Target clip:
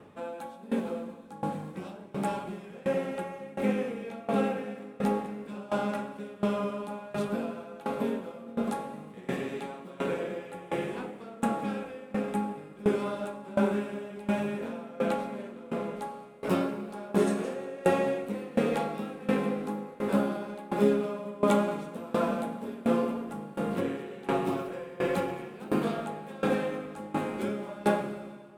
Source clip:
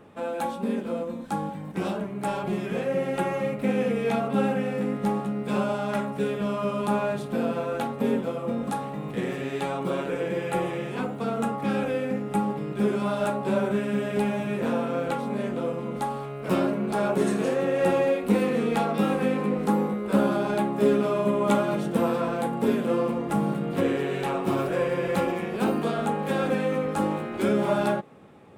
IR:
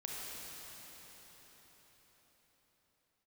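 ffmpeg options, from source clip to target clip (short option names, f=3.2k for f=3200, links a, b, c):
-filter_complex "[0:a]asplit=2[a][b];[1:a]atrim=start_sample=2205,asetrate=39690,aresample=44100[c];[b][c]afir=irnorm=-1:irlink=0,volume=-1.5dB[d];[a][d]amix=inputs=2:normalize=0,aeval=exprs='val(0)*pow(10,-21*if(lt(mod(1.4*n/s,1),2*abs(1.4)/1000),1-mod(1.4*n/s,1)/(2*abs(1.4)/1000),(mod(1.4*n/s,1)-2*abs(1.4)/1000)/(1-2*abs(1.4)/1000))/20)':c=same,volume=-3.5dB"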